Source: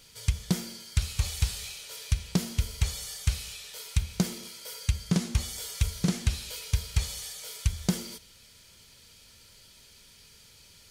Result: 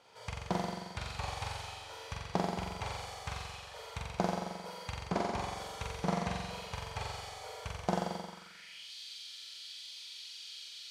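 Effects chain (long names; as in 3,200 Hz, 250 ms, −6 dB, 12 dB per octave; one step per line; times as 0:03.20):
flutter between parallel walls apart 7.6 metres, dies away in 1.3 s
band-pass filter sweep 800 Hz → 3,700 Hz, 0:08.23–0:08.93
level +9 dB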